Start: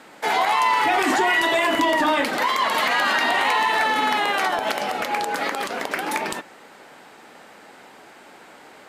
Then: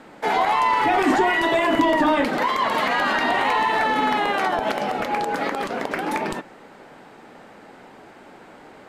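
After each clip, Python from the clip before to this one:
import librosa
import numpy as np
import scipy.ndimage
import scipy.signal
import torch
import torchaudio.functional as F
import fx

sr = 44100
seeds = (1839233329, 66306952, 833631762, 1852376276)

y = fx.tilt_eq(x, sr, slope=-2.5)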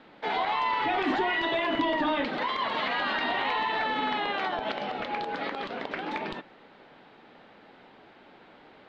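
y = fx.ladder_lowpass(x, sr, hz=4400.0, resonance_pct=45)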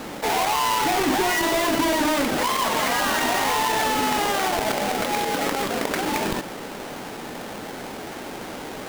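y = fx.halfwave_hold(x, sr)
y = fx.env_flatten(y, sr, amount_pct=50)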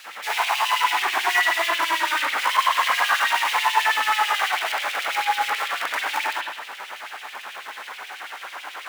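y = fx.rev_spring(x, sr, rt60_s=1.0, pass_ms=(36,), chirp_ms=45, drr_db=-6.0)
y = fx.filter_lfo_highpass(y, sr, shape='sine', hz=9.2, low_hz=980.0, high_hz=3000.0, q=1.8)
y = y * librosa.db_to_amplitude(-5.0)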